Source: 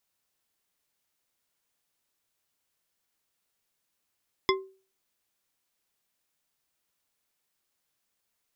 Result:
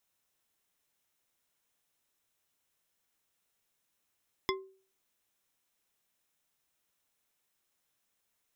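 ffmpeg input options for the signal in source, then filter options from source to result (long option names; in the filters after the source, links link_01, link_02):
-f lavfi -i "aevalsrc='0.1*pow(10,-3*t/0.38)*sin(2*PI*383*t)+0.0891*pow(10,-3*t/0.187)*sin(2*PI*1055.9*t)+0.0794*pow(10,-3*t/0.117)*sin(2*PI*2069.7*t)+0.0708*pow(10,-3*t/0.082)*sin(2*PI*3421.3*t)+0.0631*pow(10,-3*t/0.062)*sin(2*PI*5109.2*t)':duration=0.89:sample_rate=44100"
-af "bandreject=frequency=4600:width=9.5,acompressor=threshold=-43dB:ratio=1.5"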